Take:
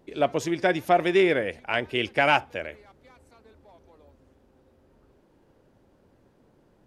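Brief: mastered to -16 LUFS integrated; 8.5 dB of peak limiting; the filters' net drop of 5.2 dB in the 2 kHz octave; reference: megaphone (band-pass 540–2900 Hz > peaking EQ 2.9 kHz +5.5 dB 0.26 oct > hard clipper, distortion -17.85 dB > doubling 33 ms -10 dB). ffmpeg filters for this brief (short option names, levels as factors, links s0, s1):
-filter_complex "[0:a]equalizer=f=2000:t=o:g=-6.5,alimiter=limit=0.112:level=0:latency=1,highpass=540,lowpass=2900,equalizer=f=2900:t=o:w=0.26:g=5.5,asoftclip=type=hard:threshold=0.0562,asplit=2[s0][s1];[s1]adelay=33,volume=0.316[s2];[s0][s2]amix=inputs=2:normalize=0,volume=7.94"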